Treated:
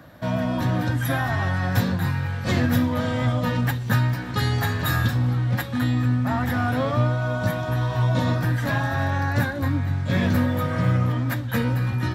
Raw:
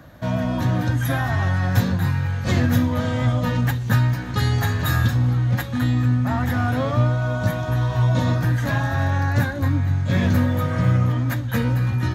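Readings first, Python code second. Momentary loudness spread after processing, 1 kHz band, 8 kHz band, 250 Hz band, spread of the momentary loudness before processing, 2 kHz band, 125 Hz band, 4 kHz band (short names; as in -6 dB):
3 LU, 0.0 dB, -1.5 dB, -1.0 dB, 3 LU, 0.0 dB, -3.0 dB, 0.0 dB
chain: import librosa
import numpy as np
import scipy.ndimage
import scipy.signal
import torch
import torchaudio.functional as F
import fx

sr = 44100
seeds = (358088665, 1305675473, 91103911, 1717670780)

y = fx.highpass(x, sr, hz=120.0, slope=6)
y = fx.notch(y, sr, hz=6500.0, q=8.8)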